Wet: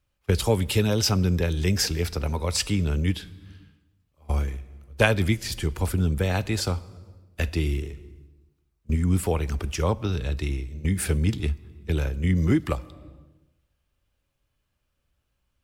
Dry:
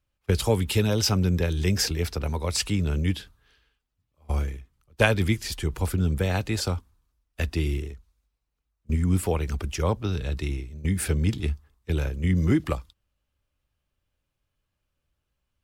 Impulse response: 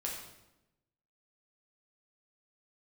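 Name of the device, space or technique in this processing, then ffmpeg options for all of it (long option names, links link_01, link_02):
compressed reverb return: -filter_complex "[0:a]asplit=2[link_01][link_02];[1:a]atrim=start_sample=2205[link_03];[link_02][link_03]afir=irnorm=-1:irlink=0,acompressor=threshold=-34dB:ratio=10,volume=-4.5dB[link_04];[link_01][link_04]amix=inputs=2:normalize=0"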